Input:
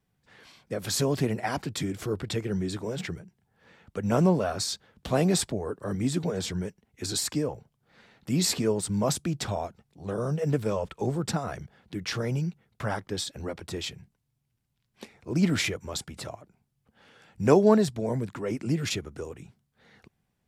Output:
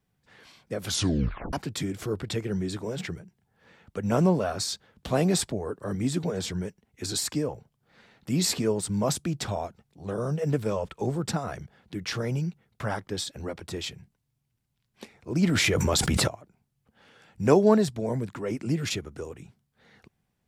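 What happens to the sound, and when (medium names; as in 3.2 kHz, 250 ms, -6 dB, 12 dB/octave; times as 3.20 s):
0.85 s: tape stop 0.68 s
15.47–16.28 s: level flattener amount 100%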